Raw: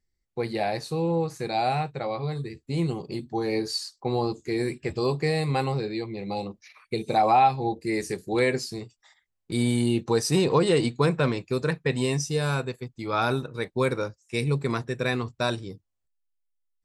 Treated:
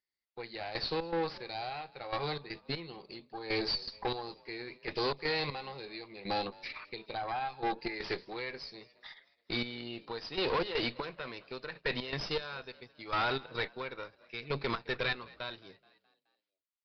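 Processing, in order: high-pass 1.3 kHz 6 dB/octave; in parallel at -2.5 dB: peak limiter -24 dBFS, peak gain reduction 9.5 dB; on the sum: compression 1.5:1, threshold -39 dBFS, peak gain reduction 7.5 dB; trance gate "......xx.xx" 120 bpm -12 dB; valve stage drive 36 dB, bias 0.7; on a send: frequency-shifting echo 213 ms, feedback 54%, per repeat +47 Hz, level -23 dB; on the sum: resampled via 11.025 kHz; trim +9 dB

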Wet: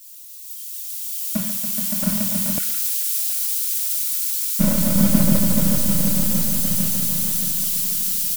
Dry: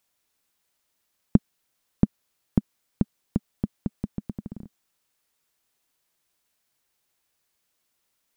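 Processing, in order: zero-crossing glitches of -8.5 dBFS; spectral noise reduction 24 dB; waveshaping leveller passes 2; hard clipper -16.5 dBFS, distortion -5 dB; phaser 1.4 Hz, delay 2.3 ms, feedback 30%; echo with a slow build-up 142 ms, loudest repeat 5, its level -4 dB; simulated room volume 2600 m³, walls furnished, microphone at 2.4 m; ever faster or slower copies 592 ms, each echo -1 st, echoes 2; 2.58–4.59 s: brick-wall FIR high-pass 1.3 kHz; delay 198 ms -17.5 dB; three bands expanded up and down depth 100%; trim -3 dB

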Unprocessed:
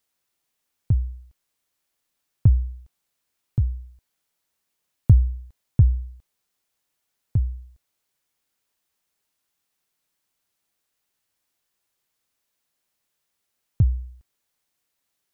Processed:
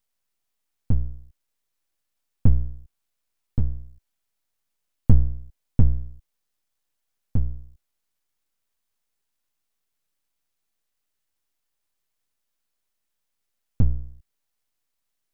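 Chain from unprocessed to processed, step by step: half-wave rectifier; bass shelf 75 Hz +7.5 dB; trim -1 dB

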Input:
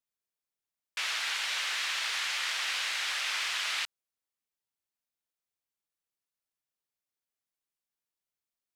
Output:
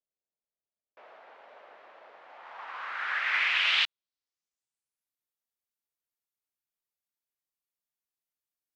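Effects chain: low-pass sweep 600 Hz -> 15 kHz, 2.20–5.25 s; upward expansion 1.5:1, over -44 dBFS; trim +3.5 dB

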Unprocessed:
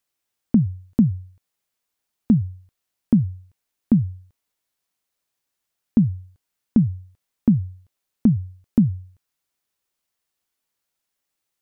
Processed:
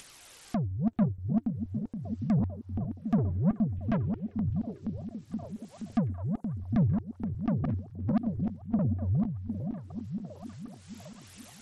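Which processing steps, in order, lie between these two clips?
backward echo that repeats 237 ms, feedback 49%, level -5.5 dB; 3.18–3.97 s: tone controls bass +8 dB, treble +3 dB; upward compressor, threshold -19 dBFS; saturation -19 dBFS, distortion -7 dB; flange 0.44 Hz, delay 0.3 ms, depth 5.2 ms, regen +51%; 7.64–8.79 s: reverse; repeats whose band climbs or falls 754 ms, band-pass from 300 Hz, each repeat 0.7 oct, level -5.5 dB; SBC 64 kbps 32 kHz

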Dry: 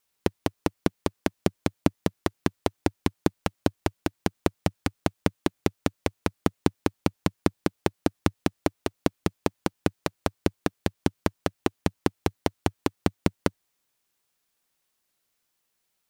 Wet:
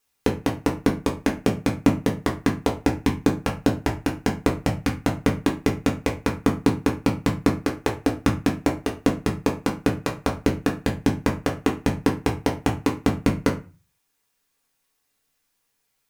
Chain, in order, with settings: 7.62–8.07 s: peaking EQ 180 Hz -11.5 dB 0.58 oct; reverberation RT60 0.30 s, pre-delay 4 ms, DRR -1.5 dB

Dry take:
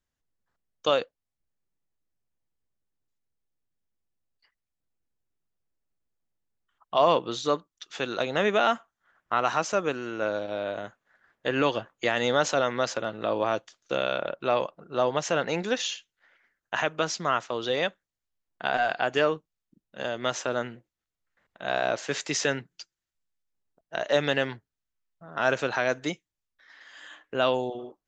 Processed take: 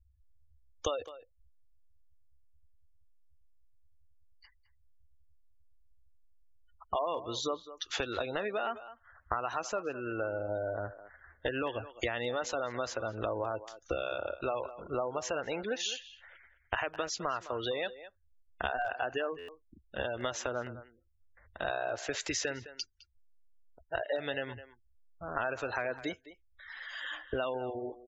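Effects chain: compression 6:1, threshold -38 dBFS, peak gain reduction 20 dB; resonant low shelf 110 Hz +12 dB, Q 3; spectral gate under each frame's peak -20 dB strong; speakerphone echo 210 ms, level -14 dB; buffer glitch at 19.38 s, samples 512, times 8; trim +7 dB

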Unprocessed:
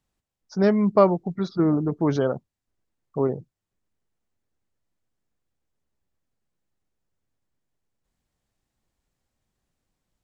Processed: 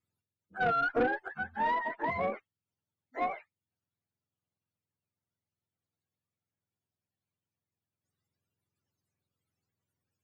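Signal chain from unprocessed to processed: spectrum inverted on a logarithmic axis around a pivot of 540 Hz; valve stage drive 16 dB, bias 0.2; trim -5.5 dB

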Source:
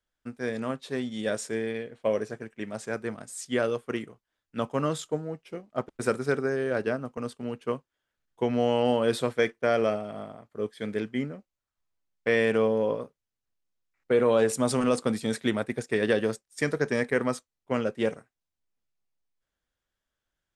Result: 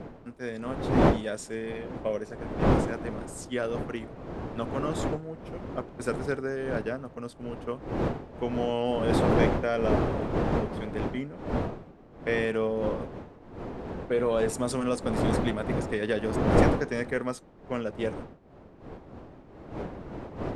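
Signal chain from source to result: wind noise 470 Hz -27 dBFS; trim -4 dB

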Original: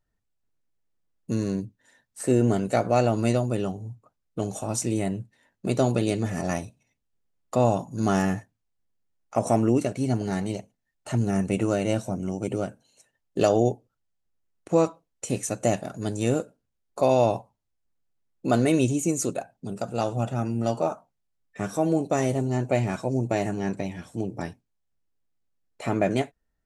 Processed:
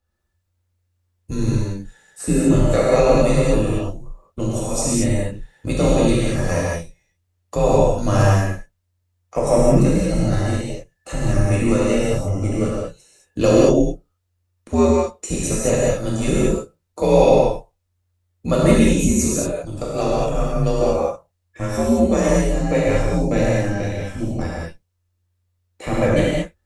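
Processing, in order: frequency shift -89 Hz; gated-style reverb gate 250 ms flat, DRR -6.5 dB; trim +1 dB

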